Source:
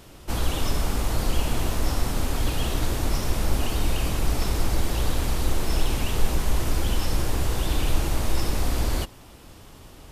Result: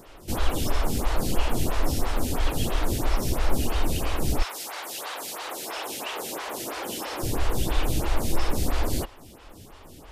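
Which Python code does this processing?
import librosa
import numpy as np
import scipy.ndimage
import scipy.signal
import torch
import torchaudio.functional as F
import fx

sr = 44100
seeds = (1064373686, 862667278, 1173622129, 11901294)

y = fx.highpass(x, sr, hz=fx.line((4.42, 980.0), (7.22, 300.0)), slope=12, at=(4.42, 7.22), fade=0.02)
y = fx.stagger_phaser(y, sr, hz=3.0)
y = F.gain(torch.from_numpy(y), 3.5).numpy()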